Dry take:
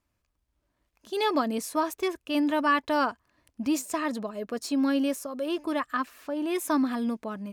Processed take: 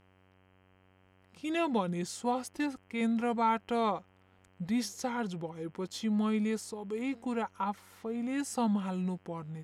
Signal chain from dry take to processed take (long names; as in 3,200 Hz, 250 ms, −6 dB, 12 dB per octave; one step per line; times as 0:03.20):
hum with harmonics 120 Hz, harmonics 34, −60 dBFS −4 dB per octave
change of speed 0.781×
level −5 dB